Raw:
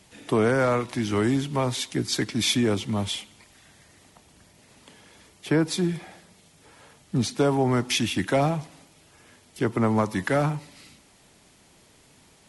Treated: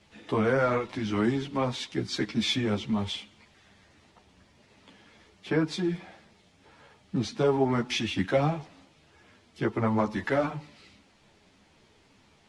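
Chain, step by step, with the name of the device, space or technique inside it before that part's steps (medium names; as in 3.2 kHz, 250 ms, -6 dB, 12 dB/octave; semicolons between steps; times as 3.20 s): string-machine ensemble chorus (three-phase chorus; low-pass 4.6 kHz 12 dB/octave)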